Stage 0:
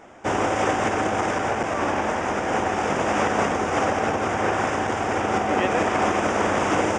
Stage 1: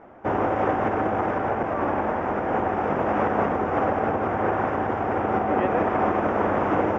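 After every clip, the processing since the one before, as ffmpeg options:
ffmpeg -i in.wav -af "lowpass=1400" out.wav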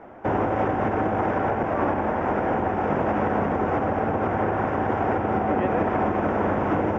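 ffmpeg -i in.wav -filter_complex "[0:a]bandreject=frequency=1200:width=18,acrossover=split=250[link_01][link_02];[link_02]alimiter=limit=-18.5dB:level=0:latency=1:release=341[link_03];[link_01][link_03]amix=inputs=2:normalize=0,volume=3.5dB" out.wav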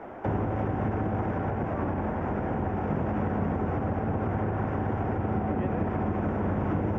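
ffmpeg -i in.wav -filter_complex "[0:a]equalizer=frequency=400:width=6.8:gain=2,acrossover=split=210[link_01][link_02];[link_02]acompressor=threshold=-33dB:ratio=10[link_03];[link_01][link_03]amix=inputs=2:normalize=0,volume=2.5dB" out.wav

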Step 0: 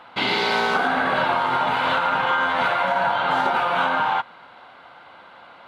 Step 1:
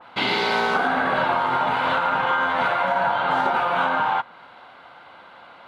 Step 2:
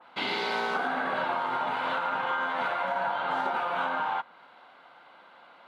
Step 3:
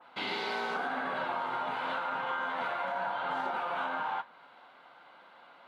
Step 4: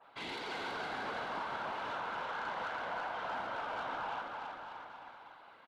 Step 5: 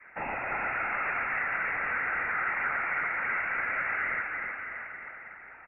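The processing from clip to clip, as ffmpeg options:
ffmpeg -i in.wav -af "adynamicequalizer=threshold=0.0224:dfrequency=2100:dqfactor=0.7:tfrequency=2100:tqfactor=0.7:attack=5:release=100:ratio=0.375:range=2:mode=cutabove:tftype=highshelf" out.wav
ffmpeg -i in.wav -af "highpass=180,volume=-8dB" out.wav
ffmpeg -i in.wav -filter_complex "[0:a]asplit=2[link_01][link_02];[link_02]alimiter=level_in=3dB:limit=-24dB:level=0:latency=1,volume=-3dB,volume=-1dB[link_03];[link_01][link_03]amix=inputs=2:normalize=0,flanger=delay=7:depth=7.5:regen=-65:speed=0.9:shape=sinusoidal,volume=-3.5dB" out.wav
ffmpeg -i in.wav -af "afftfilt=real='hypot(re,im)*cos(2*PI*random(0))':imag='hypot(re,im)*sin(2*PI*random(1))':win_size=512:overlap=0.75,asoftclip=type=tanh:threshold=-36.5dB,aecho=1:1:330|627|894.3|1135|1351:0.631|0.398|0.251|0.158|0.1,volume=1dB" out.wav
ffmpeg -i in.wav -af "tiltshelf=frequency=970:gain=-7.5,lowpass=frequency=2500:width_type=q:width=0.5098,lowpass=frequency=2500:width_type=q:width=0.6013,lowpass=frequency=2500:width_type=q:width=0.9,lowpass=frequency=2500:width_type=q:width=2.563,afreqshift=-2900,volume=8dB" out.wav

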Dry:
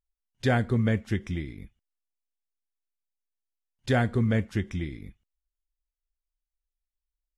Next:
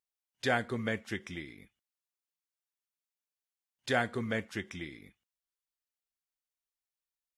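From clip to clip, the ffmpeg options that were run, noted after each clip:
ffmpeg -i in.wav -af "highpass=frequency=690:poles=1" out.wav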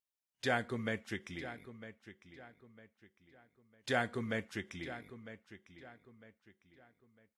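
ffmpeg -i in.wav -filter_complex "[0:a]asplit=2[link_01][link_02];[link_02]adelay=953,lowpass=frequency=4400:poles=1,volume=-13dB,asplit=2[link_03][link_04];[link_04]adelay=953,lowpass=frequency=4400:poles=1,volume=0.36,asplit=2[link_05][link_06];[link_06]adelay=953,lowpass=frequency=4400:poles=1,volume=0.36,asplit=2[link_07][link_08];[link_08]adelay=953,lowpass=frequency=4400:poles=1,volume=0.36[link_09];[link_01][link_03][link_05][link_07][link_09]amix=inputs=5:normalize=0,volume=-3.5dB" out.wav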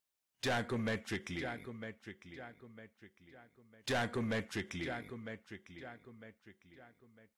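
ffmpeg -i in.wav -af "asoftclip=type=tanh:threshold=-35dB,volume=5dB" out.wav

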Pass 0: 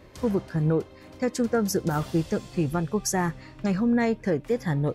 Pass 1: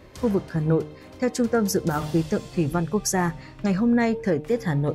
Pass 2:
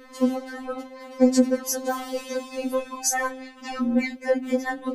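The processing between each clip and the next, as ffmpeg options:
ffmpeg -i in.wav -af "bandreject=frequency=151.3:width_type=h:width=4,bandreject=frequency=302.6:width_type=h:width=4,bandreject=frequency=453.9:width_type=h:width=4,bandreject=frequency=605.2:width_type=h:width=4,bandreject=frequency=756.5:width_type=h:width=4,bandreject=frequency=907.8:width_type=h:width=4,volume=2.5dB" out.wav
ffmpeg -i in.wav -af "bandreject=frequency=51.9:width_type=h:width=4,bandreject=frequency=103.8:width_type=h:width=4,bandreject=frequency=155.7:width_type=h:width=4,bandreject=frequency=207.6:width_type=h:width=4,bandreject=frequency=259.5:width_type=h:width=4,afftfilt=real='re*3.46*eq(mod(b,12),0)':imag='im*3.46*eq(mod(b,12),0)':win_size=2048:overlap=0.75,volume=4.5dB" out.wav

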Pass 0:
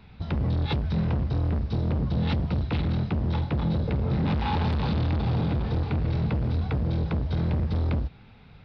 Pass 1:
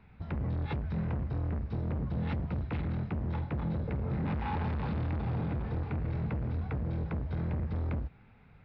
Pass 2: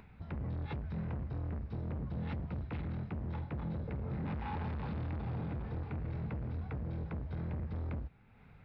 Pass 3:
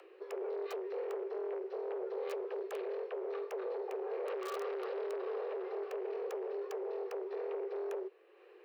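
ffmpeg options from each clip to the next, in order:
ffmpeg -i in.wav -af "highshelf=frequency=2800:width_type=q:width=1.5:gain=-8.5,volume=-7.5dB" out.wav
ffmpeg -i in.wav -af "acompressor=mode=upward:threshold=-44dB:ratio=2.5,volume=-5.5dB" out.wav
ffmpeg -i in.wav -filter_complex "[0:a]acrossover=split=270|840[link_01][link_02][link_03];[link_03]aeval=exprs='(mod(94.4*val(0)+1,2)-1)/94.4':channel_layout=same[link_04];[link_01][link_02][link_04]amix=inputs=3:normalize=0,afreqshift=320,volume=-1dB" out.wav

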